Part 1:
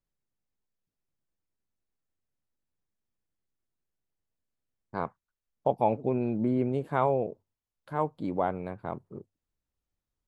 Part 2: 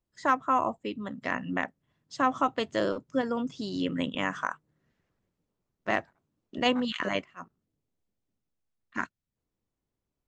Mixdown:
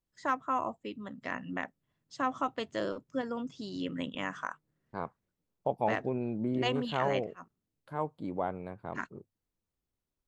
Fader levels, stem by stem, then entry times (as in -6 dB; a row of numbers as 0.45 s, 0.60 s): -5.0 dB, -6.0 dB; 0.00 s, 0.00 s